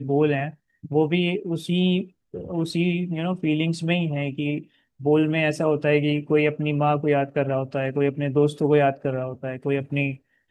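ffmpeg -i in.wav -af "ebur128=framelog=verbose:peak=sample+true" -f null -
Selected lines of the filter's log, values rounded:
Integrated loudness:
  I:         -23.4 LUFS
  Threshold: -33.6 LUFS
Loudness range:
  LRA:         2.7 LU
  Threshold: -43.4 LUFS
  LRA low:   -24.9 LUFS
  LRA high:  -22.2 LUFS
Sample peak:
  Peak:       -7.2 dBFS
True peak:
  Peak:       -7.2 dBFS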